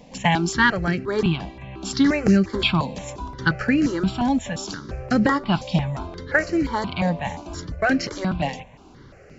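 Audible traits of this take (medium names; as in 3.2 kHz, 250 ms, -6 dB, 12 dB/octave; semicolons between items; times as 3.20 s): notches that jump at a steady rate 5.7 Hz 370–3500 Hz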